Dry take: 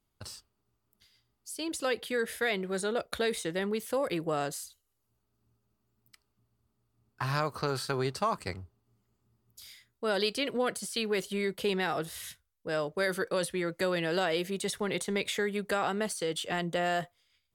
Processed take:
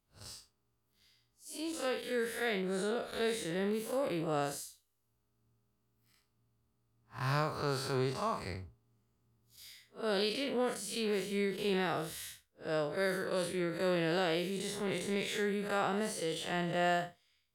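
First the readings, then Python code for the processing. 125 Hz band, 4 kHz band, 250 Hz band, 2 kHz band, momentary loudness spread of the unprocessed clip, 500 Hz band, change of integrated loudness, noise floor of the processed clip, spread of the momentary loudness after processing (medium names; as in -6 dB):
-1.0 dB, -4.0 dB, -1.5 dB, -4.0 dB, 14 LU, -2.5 dB, -3.0 dB, -79 dBFS, 14 LU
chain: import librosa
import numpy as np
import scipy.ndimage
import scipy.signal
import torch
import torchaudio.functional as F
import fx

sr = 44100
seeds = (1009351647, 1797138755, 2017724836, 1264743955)

y = fx.spec_blur(x, sr, span_ms=117.0)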